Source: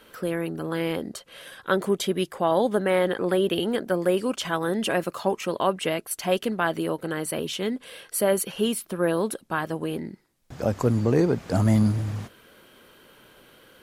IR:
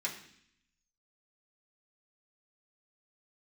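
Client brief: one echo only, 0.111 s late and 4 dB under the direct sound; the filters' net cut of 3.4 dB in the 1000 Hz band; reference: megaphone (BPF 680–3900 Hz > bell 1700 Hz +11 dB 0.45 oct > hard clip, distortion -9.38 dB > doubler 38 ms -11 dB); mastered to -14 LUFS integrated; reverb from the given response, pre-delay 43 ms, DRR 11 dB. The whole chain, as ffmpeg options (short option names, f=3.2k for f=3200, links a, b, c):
-filter_complex "[0:a]equalizer=f=1k:t=o:g=-4.5,aecho=1:1:111:0.631,asplit=2[a][b];[1:a]atrim=start_sample=2205,adelay=43[c];[b][c]afir=irnorm=-1:irlink=0,volume=-14dB[d];[a][d]amix=inputs=2:normalize=0,highpass=680,lowpass=3.9k,equalizer=f=1.7k:t=o:w=0.45:g=11,asoftclip=type=hard:threshold=-24dB,asplit=2[e][f];[f]adelay=38,volume=-11dB[g];[e][g]amix=inputs=2:normalize=0,volume=16dB"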